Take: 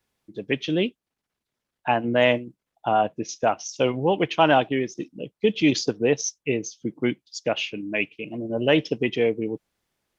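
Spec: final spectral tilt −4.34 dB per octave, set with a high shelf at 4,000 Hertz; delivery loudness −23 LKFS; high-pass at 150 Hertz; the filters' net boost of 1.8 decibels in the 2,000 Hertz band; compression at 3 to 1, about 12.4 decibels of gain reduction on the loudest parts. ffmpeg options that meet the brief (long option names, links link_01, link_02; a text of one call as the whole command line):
ffmpeg -i in.wav -af "highpass=150,equalizer=frequency=2000:width_type=o:gain=4.5,highshelf=frequency=4000:gain=-8,acompressor=threshold=-31dB:ratio=3,volume=11dB" out.wav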